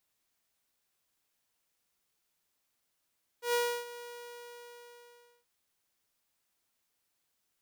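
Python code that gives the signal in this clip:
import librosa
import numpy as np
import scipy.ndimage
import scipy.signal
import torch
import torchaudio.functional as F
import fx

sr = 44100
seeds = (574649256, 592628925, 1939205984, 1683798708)

y = fx.adsr_tone(sr, wave='saw', hz=480.0, attack_ms=115.0, decay_ms=310.0, sustain_db=-17.0, held_s=0.57, release_ms=1460.0, level_db=-23.5)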